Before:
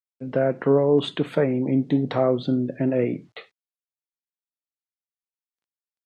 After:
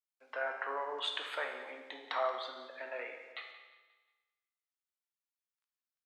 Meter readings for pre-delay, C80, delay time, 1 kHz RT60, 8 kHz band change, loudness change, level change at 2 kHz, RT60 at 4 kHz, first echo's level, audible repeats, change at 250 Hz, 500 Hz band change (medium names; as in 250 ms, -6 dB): 15 ms, 7.0 dB, 178 ms, 1.3 s, no reading, -16.5 dB, -1.5 dB, 1.3 s, -15.0 dB, 3, -37.5 dB, -19.0 dB